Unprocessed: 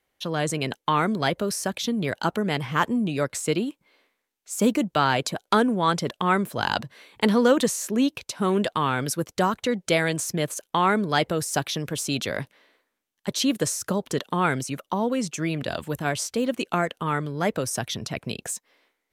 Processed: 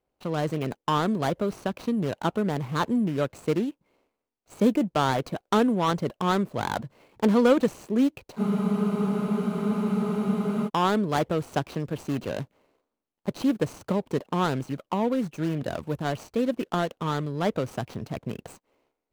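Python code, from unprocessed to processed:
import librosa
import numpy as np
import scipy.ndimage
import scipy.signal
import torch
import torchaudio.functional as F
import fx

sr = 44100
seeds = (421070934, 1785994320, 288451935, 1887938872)

y = scipy.ndimage.median_filter(x, 25, mode='constant')
y = fx.spec_freeze(y, sr, seeds[0], at_s=8.41, hold_s=2.26)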